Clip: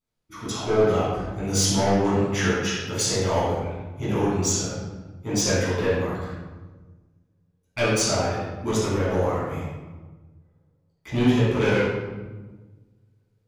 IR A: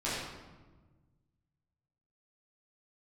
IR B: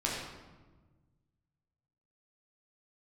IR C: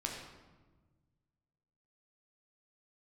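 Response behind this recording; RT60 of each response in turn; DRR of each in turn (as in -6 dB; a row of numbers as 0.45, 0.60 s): A; 1.3, 1.3, 1.3 s; -11.0, -5.0, -1.0 dB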